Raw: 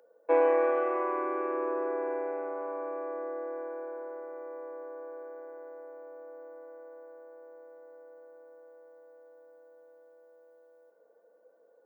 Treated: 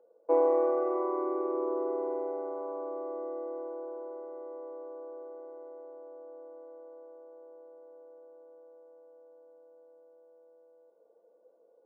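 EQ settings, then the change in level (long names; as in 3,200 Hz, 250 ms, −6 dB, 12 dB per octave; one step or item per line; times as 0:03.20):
Savitzky-Golay smoothing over 65 samples
parametric band 370 Hz +5.5 dB 0.32 octaves
−1.5 dB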